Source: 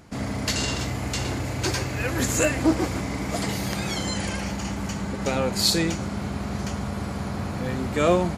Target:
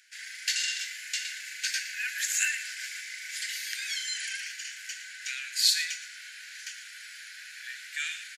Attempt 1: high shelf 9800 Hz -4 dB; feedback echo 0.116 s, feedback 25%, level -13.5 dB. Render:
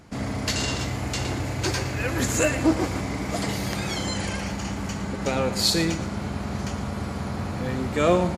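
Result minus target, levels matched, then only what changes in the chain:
2000 Hz band -4.0 dB
add first: Chebyshev high-pass 1500 Hz, order 8

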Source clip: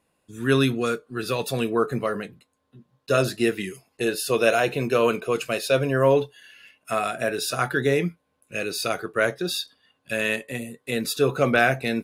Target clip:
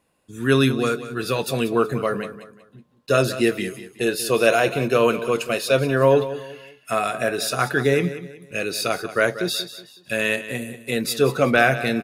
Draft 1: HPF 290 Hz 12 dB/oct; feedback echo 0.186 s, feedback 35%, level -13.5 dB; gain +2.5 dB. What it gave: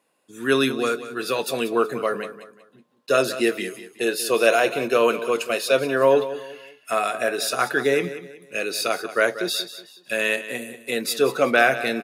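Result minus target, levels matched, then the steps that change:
250 Hz band -3.0 dB
remove: HPF 290 Hz 12 dB/oct

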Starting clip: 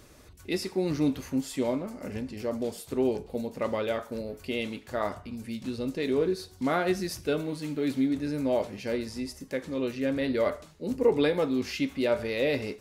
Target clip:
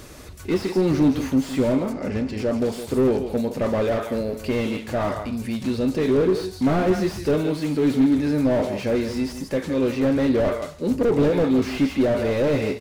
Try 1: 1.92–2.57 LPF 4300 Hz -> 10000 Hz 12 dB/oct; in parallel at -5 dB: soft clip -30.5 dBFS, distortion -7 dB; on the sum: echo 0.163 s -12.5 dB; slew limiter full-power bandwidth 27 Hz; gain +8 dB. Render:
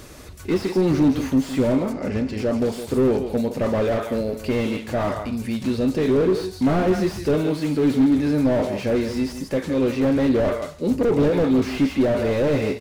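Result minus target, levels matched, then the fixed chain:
soft clip: distortion -4 dB
1.92–2.57 LPF 4300 Hz -> 10000 Hz 12 dB/oct; in parallel at -5 dB: soft clip -39.5 dBFS, distortion -3 dB; on the sum: echo 0.163 s -12.5 dB; slew limiter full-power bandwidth 27 Hz; gain +8 dB

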